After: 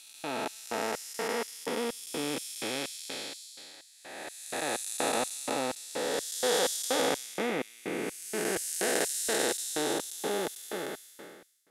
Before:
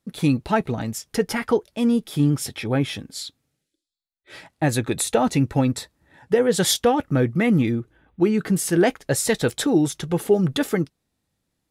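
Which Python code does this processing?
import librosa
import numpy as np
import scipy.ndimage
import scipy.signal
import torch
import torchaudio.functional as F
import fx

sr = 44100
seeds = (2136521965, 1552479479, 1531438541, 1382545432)

y = fx.spec_blur(x, sr, span_ms=870.0)
y = fx.filter_lfo_highpass(y, sr, shape='square', hz=2.1, low_hz=600.0, high_hz=5800.0, q=0.84)
y = F.gain(torch.from_numpy(y), 6.0).numpy()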